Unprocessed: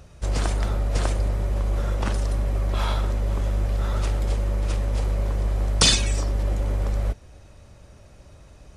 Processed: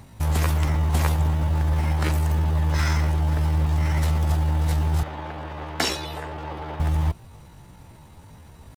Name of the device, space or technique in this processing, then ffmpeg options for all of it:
chipmunk voice: -filter_complex "[0:a]asetrate=68011,aresample=44100,atempo=0.64842,asettb=1/sr,asplit=3[link_01][link_02][link_03];[link_01]atrim=end=5.034[link_04];[link_02]atrim=start=5.03:end=6.8,asetpts=PTS-STARTPTS,afade=type=in:duration=0.004:curve=qsin,afade=type=out:start_time=1.766:duration=0.004:curve=qsin,acrossover=split=260 4200:gain=0.141 1 0.112[link_05][link_06][link_07];[link_05][link_06][link_07]amix=inputs=3:normalize=0[link_08];[link_03]atrim=start=6.796[link_09];[link_04][link_08]acrossfade=duration=0.004:curve1=hsin:curve2=qsin[link_10];[link_10][link_09]acrossfade=duration=0.004:curve1=qsin:curve2=hsin,volume=1.5dB"

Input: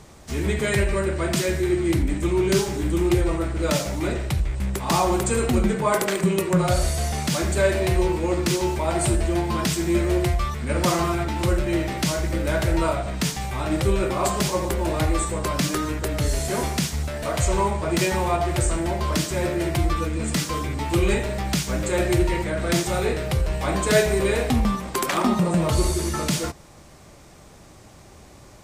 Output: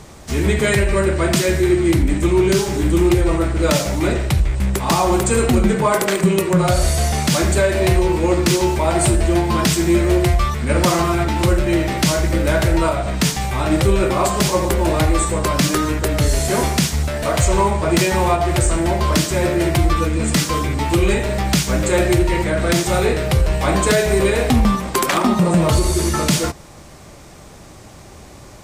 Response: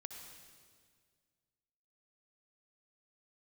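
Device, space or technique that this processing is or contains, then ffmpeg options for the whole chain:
limiter into clipper: -af "alimiter=limit=-12.5dB:level=0:latency=1:release=206,asoftclip=type=hard:threshold=-14dB,volume=7dB"

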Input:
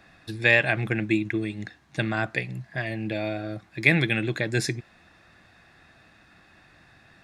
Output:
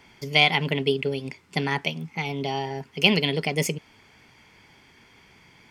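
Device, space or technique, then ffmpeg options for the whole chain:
nightcore: -af "asetrate=56007,aresample=44100,volume=1dB"

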